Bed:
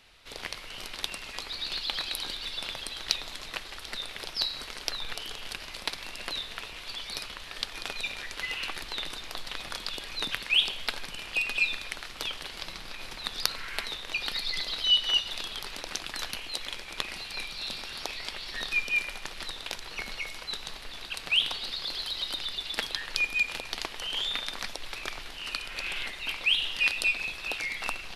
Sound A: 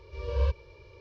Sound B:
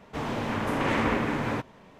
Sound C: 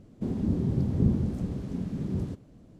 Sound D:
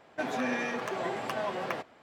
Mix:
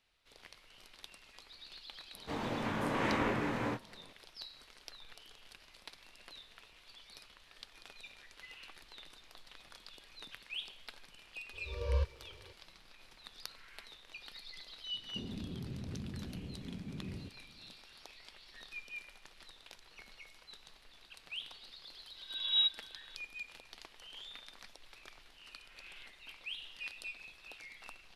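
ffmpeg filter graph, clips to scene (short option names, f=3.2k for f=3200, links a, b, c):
-filter_complex "[1:a]asplit=2[a][b];[0:a]volume=-18.5dB[c];[2:a]asplit=2[d][e];[e]adelay=24,volume=-4dB[f];[d][f]amix=inputs=2:normalize=0[g];[a]crystalizer=i=1:c=0[h];[3:a]acompressor=threshold=-27dB:ratio=6:attack=3.2:release=140:knee=1:detection=peak[i];[b]lowpass=f=3.3k:t=q:w=0.5098,lowpass=f=3.3k:t=q:w=0.6013,lowpass=f=3.3k:t=q:w=0.9,lowpass=f=3.3k:t=q:w=2.563,afreqshift=-3900[j];[g]atrim=end=1.99,asetpts=PTS-STARTPTS,volume=-8dB,afade=t=in:d=0.004:c=hsin,afade=t=out:st=1.986:d=0.004:c=hsin,adelay=2140[k];[h]atrim=end=1,asetpts=PTS-STARTPTS,volume=-5.5dB,afade=t=in:d=0.004:c=hsin,afade=t=out:st=0.996:d=0.004:c=hsin,adelay=11530[l];[i]atrim=end=2.79,asetpts=PTS-STARTPTS,volume=-11.5dB,afade=t=in:d=0.004:c=hsin,afade=t=out:st=2.786:d=0.004:c=hsin,adelay=14940[m];[j]atrim=end=1,asetpts=PTS-STARTPTS,volume=-4.5dB,afade=t=in:d=0.004:c=hsin,afade=t=out:st=0.996:d=0.004:c=hsin,adelay=22160[n];[c][k][l][m][n]amix=inputs=5:normalize=0"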